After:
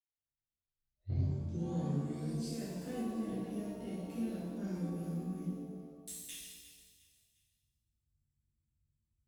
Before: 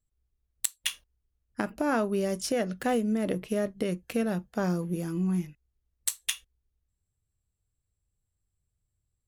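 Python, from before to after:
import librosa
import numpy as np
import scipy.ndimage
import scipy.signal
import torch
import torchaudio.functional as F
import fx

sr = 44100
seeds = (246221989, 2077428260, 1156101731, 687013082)

p1 = fx.tape_start_head(x, sr, length_s=2.76)
p2 = scipy.signal.sosfilt(scipy.signal.butter(2, 52.0, 'highpass', fs=sr, output='sos'), p1)
p3 = fx.tone_stack(p2, sr, knobs='10-0-1')
p4 = p3 + fx.echo_feedback(p3, sr, ms=354, feedback_pct=39, wet_db=-15.5, dry=0)
p5 = fx.rev_shimmer(p4, sr, seeds[0], rt60_s=1.3, semitones=7, shimmer_db=-8, drr_db=-10.5)
y = F.gain(torch.from_numpy(p5), -3.5).numpy()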